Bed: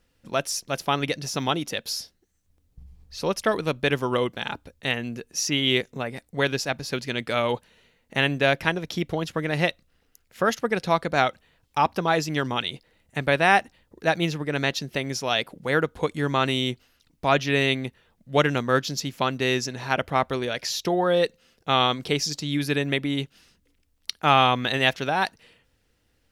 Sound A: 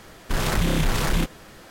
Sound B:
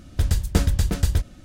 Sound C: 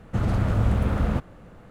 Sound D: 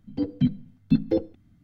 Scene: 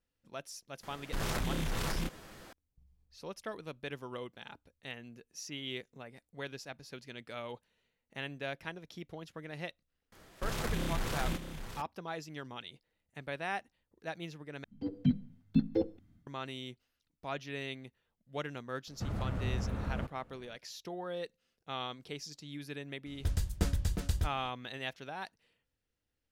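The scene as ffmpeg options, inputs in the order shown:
ffmpeg -i bed.wav -i cue0.wav -i cue1.wav -i cue2.wav -i cue3.wav -filter_complex "[1:a]asplit=2[link_01][link_02];[0:a]volume=-18.5dB[link_03];[link_01]acompressor=threshold=-23dB:ratio=6:attack=3.2:release=140:knee=1:detection=peak[link_04];[link_02]aecho=1:1:626:0.316[link_05];[4:a]dynaudnorm=framelen=100:gausssize=5:maxgain=12dB[link_06];[link_03]asplit=2[link_07][link_08];[link_07]atrim=end=14.644[link_09];[link_06]atrim=end=1.63,asetpts=PTS-STARTPTS,volume=-14.5dB[link_10];[link_08]atrim=start=16.266[link_11];[link_04]atrim=end=1.7,asetpts=PTS-STARTPTS,volume=-6.5dB,afade=type=in:duration=0.004:curve=hsin,afade=type=out:start_time=1.696:duration=0.004:curve=hsin,adelay=830[link_12];[link_05]atrim=end=1.7,asetpts=PTS-STARTPTS,volume=-12.5dB,afade=type=in:duration=0.004:curve=hsin,afade=type=out:start_time=1.696:duration=0.004:curve=hsin,adelay=10120[link_13];[3:a]atrim=end=1.7,asetpts=PTS-STARTPTS,volume=-13dB,afade=type=in:duration=0.004:curve=hsin,afade=type=out:start_time=1.696:duration=0.004:curve=hsin,adelay=18870[link_14];[2:a]atrim=end=1.44,asetpts=PTS-STARTPTS,volume=-11.5dB,afade=type=in:duration=0.004:curve=hsin,afade=type=out:start_time=1.436:duration=0.004:curve=hsin,adelay=23060[link_15];[link_09][link_10]acrossfade=duration=0.004:curve1=hsin:curve2=hsin[link_16];[link_16][link_11]acrossfade=duration=0.004:curve1=hsin:curve2=hsin[link_17];[link_17][link_12][link_13][link_14][link_15]amix=inputs=5:normalize=0" out.wav

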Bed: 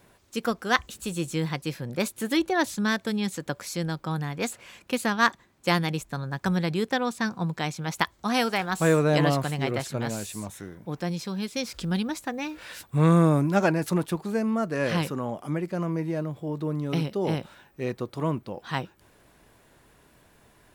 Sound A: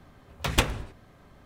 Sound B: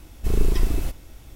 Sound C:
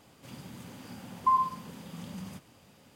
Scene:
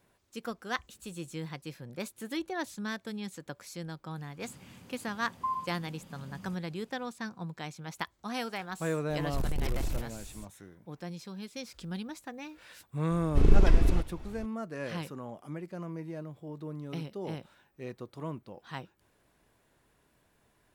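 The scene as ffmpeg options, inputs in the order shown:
ffmpeg -i bed.wav -i cue0.wav -i cue1.wav -i cue2.wav -filter_complex "[2:a]asplit=2[link_01][link_02];[0:a]volume=-11dB[link_03];[3:a]lowshelf=frequency=60:gain=12[link_04];[link_01]asoftclip=type=hard:threshold=-22dB[link_05];[link_02]adynamicsmooth=sensitivity=3:basefreq=3700[link_06];[link_04]atrim=end=2.95,asetpts=PTS-STARTPTS,volume=-8.5dB,afade=type=in:duration=0.004:curve=hsin,afade=type=out:start_time=2.946:duration=0.004:curve=hsin,adelay=183897S[link_07];[link_05]atrim=end=1.35,asetpts=PTS-STARTPTS,volume=-5dB,afade=type=in:duration=0.004:curve=hsin,afade=type=out:start_time=1.346:duration=0.004:curve=hsin,adelay=9100[link_08];[link_06]atrim=end=1.35,asetpts=PTS-STARTPTS,volume=-0.5dB,afade=type=in:duration=0.004:curve=hsin,afade=type=out:start_time=1.346:duration=0.004:curve=hsin,adelay=13110[link_09];[link_03][link_07][link_08][link_09]amix=inputs=4:normalize=0" out.wav

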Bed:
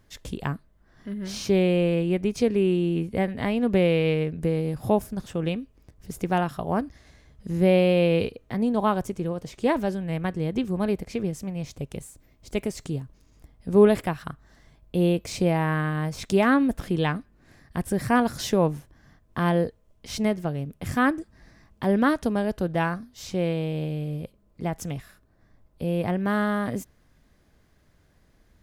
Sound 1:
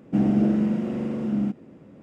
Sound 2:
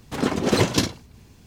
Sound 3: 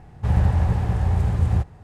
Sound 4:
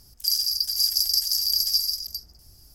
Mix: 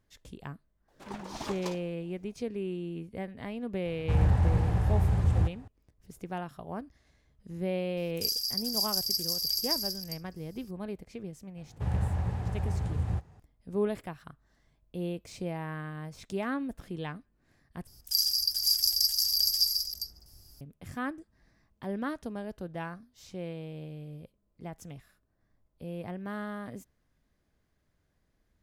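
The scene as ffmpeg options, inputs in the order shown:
ffmpeg -i bed.wav -i cue0.wav -i cue1.wav -i cue2.wav -i cue3.wav -filter_complex "[3:a]asplit=2[link_01][link_02];[4:a]asplit=2[link_03][link_04];[0:a]volume=-13dB[link_05];[2:a]aeval=exprs='val(0)*sin(2*PI*570*n/s+570*0.3/5*sin(2*PI*5*n/s))':channel_layout=same[link_06];[link_01]acontrast=70[link_07];[link_02]highpass=55[link_08];[link_05]asplit=2[link_09][link_10];[link_09]atrim=end=17.874[link_11];[link_04]atrim=end=2.74,asetpts=PTS-STARTPTS,volume=-3.5dB[link_12];[link_10]atrim=start=20.606[link_13];[link_06]atrim=end=1.46,asetpts=PTS-STARTPTS,volume=-17dB,afade=type=in:duration=0.004:curve=hsin,afade=type=out:start_time=1.456:duration=0.004:curve=hsin,adelay=880[link_14];[link_07]atrim=end=1.83,asetpts=PTS-STARTPTS,volume=-11dB,afade=type=in:duration=0.004:curve=hsin,afade=type=out:start_time=1.826:duration=0.004:curve=hsin,adelay=169785S[link_15];[link_03]atrim=end=2.74,asetpts=PTS-STARTPTS,volume=-7.5dB,afade=type=in:duration=0.004:curve=hsin,afade=type=out:start_time=2.736:duration=0.004:curve=hsin,adelay=7970[link_16];[link_08]atrim=end=1.83,asetpts=PTS-STARTPTS,volume=-10dB,afade=type=in:duration=0.004:curve=hsin,afade=type=out:start_time=1.826:duration=0.004:curve=hsin,adelay=11570[link_17];[link_11][link_12]acrossfade=duration=0.004:curve1=hsin:curve2=hsin[link_18];[link_18][link_13]acrossfade=duration=0.004:curve1=hsin:curve2=hsin[link_19];[link_19][link_14][link_15][link_16][link_17]amix=inputs=5:normalize=0" out.wav

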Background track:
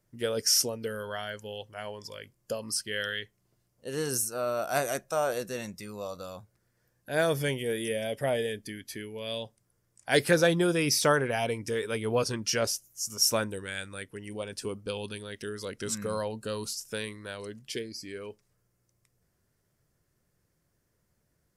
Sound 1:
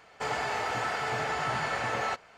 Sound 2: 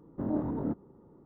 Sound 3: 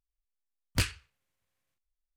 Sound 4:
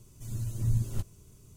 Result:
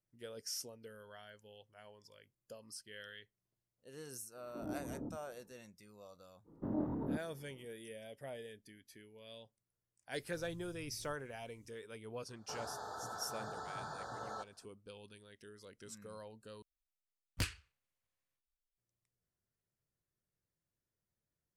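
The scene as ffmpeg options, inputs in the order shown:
ffmpeg -i bed.wav -i cue0.wav -i cue1.wav -i cue2.wav -i cue3.wav -filter_complex "[2:a]asplit=2[link_01][link_02];[0:a]volume=-18.5dB[link_03];[link_01]acrossover=split=210|1100[link_04][link_05][link_06];[link_05]adelay=90[link_07];[link_04]adelay=160[link_08];[link_08][link_07][link_06]amix=inputs=3:normalize=0[link_09];[4:a]acompressor=threshold=-36dB:ratio=6:attack=3.2:release=140:knee=1:detection=peak[link_10];[1:a]asuperstop=centerf=2400:order=12:qfactor=1.3[link_11];[link_03]asplit=2[link_12][link_13];[link_12]atrim=end=16.624[link_14];[3:a]atrim=end=2.16,asetpts=PTS-STARTPTS,volume=-9dB[link_15];[link_13]atrim=start=18.776[link_16];[link_09]atrim=end=1.25,asetpts=PTS-STARTPTS,volume=-10.5dB,afade=type=in:duration=0.004:curve=hsin,afade=type=out:start_time=1.246:duration=0.004:curve=hsin,adelay=4270[link_17];[link_02]atrim=end=1.25,asetpts=PTS-STARTPTS,volume=-6dB,afade=type=in:duration=0.05,afade=type=out:start_time=1.2:duration=0.05,adelay=6440[link_18];[link_10]atrim=end=1.56,asetpts=PTS-STARTPTS,volume=-16.5dB,afade=type=in:duration=0.004:curve=hsin,afade=type=out:start_time=1.556:duration=0.004:curve=hsin,adelay=10130[link_19];[link_11]atrim=end=2.37,asetpts=PTS-STARTPTS,volume=-13.5dB,afade=type=in:duration=0.004:curve=hsin,afade=type=out:start_time=2.366:duration=0.004:curve=hsin,adelay=12280[link_20];[link_14][link_15]acrossfade=duration=0.004:curve1=hsin:curve2=hsin[link_21];[link_21][link_16]acrossfade=duration=0.004:curve1=hsin:curve2=hsin[link_22];[link_22][link_17][link_18][link_19][link_20]amix=inputs=5:normalize=0" out.wav

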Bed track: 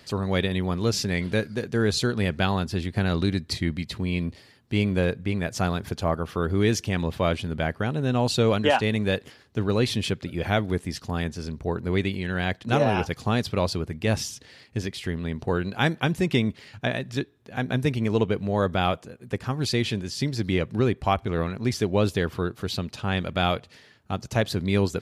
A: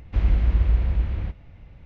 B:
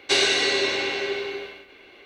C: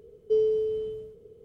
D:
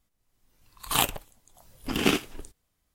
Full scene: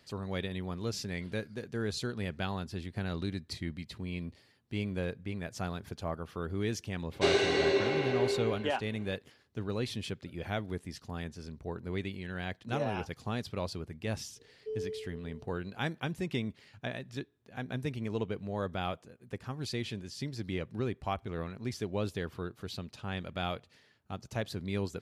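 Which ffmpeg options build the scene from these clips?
ffmpeg -i bed.wav -i cue0.wav -i cue1.wav -i cue2.wav -filter_complex "[0:a]volume=-11.5dB[link_01];[2:a]tiltshelf=frequency=1400:gain=8[link_02];[3:a]tremolo=f=2:d=0.38[link_03];[link_02]atrim=end=2.05,asetpts=PTS-STARTPTS,volume=-7.5dB,afade=type=in:duration=0.004:curve=hsin,afade=type=out:start_time=2.046:duration=0.004:curve=hsin,adelay=7120[link_04];[link_03]atrim=end=1.44,asetpts=PTS-STARTPTS,volume=-13dB,afade=type=in:duration=0.004:curve=hsin,afade=type=out:start_time=1.436:duration=0.004:curve=hsin,adelay=14360[link_05];[link_01][link_04][link_05]amix=inputs=3:normalize=0" out.wav

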